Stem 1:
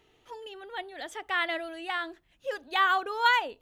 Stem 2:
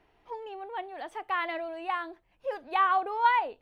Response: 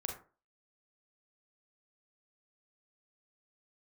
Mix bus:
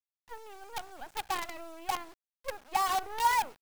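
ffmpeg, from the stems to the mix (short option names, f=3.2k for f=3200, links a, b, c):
-filter_complex "[0:a]highpass=f=820:t=q:w=8.3,volume=-14.5dB,asplit=2[a][b];[b]volume=-14.5dB[c];[1:a]volume=-1,adelay=0.9,volume=-5.5dB[d];[2:a]atrim=start_sample=2205[e];[c][e]afir=irnorm=-1:irlink=0[f];[a][d][f]amix=inputs=3:normalize=0,lowpass=f=3.4k:p=1,acrusher=bits=6:dc=4:mix=0:aa=0.000001"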